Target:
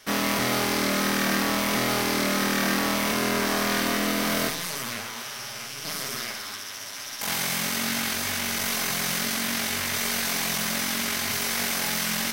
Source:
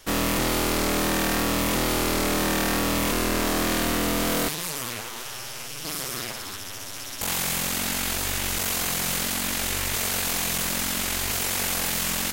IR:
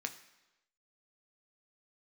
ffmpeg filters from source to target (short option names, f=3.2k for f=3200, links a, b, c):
-filter_complex "[0:a]asettb=1/sr,asplit=3[a][b][c];[a]atrim=end=6.154[d];[b]atrim=start=6.15:end=7.27,asetpts=PTS-STARTPTS,afade=t=in:d=0.004:c=qsin,afade=t=out:st=1.116:d=0.004:c=qsin,lowshelf=f=320:g=-8[e];[c]atrim=start=7.266[f];[d][e]acrossfade=d=0.004:c1=hsin:c2=qsin[g];[g][f]acrossfade=d=0.004:c1=qsin:c2=hsin[h];[1:a]atrim=start_sample=2205,asetrate=38808,aresample=44100[i];[h][i]afir=irnorm=-1:irlink=0"